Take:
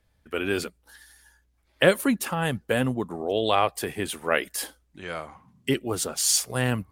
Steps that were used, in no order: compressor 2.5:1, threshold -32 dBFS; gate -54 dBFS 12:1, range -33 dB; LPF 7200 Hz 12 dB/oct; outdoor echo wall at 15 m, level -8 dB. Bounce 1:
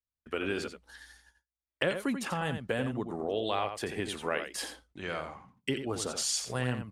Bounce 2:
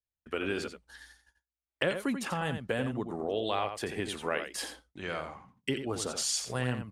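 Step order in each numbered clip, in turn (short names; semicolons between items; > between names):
gate > LPF > compressor > outdoor echo; LPF > compressor > gate > outdoor echo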